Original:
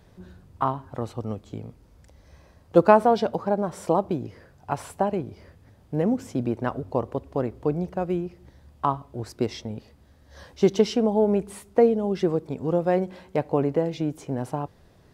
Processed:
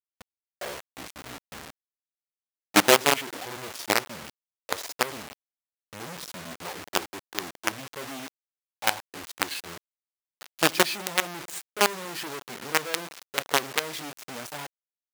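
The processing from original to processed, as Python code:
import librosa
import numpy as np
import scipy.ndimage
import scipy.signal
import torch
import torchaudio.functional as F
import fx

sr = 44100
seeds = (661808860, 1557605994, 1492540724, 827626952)

y = fx.pitch_glide(x, sr, semitones=-11.0, runs='ending unshifted')
y = fx.quant_companded(y, sr, bits=2)
y = fx.highpass(y, sr, hz=1100.0, slope=6)
y = F.gain(torch.from_numpy(y), -2.0).numpy()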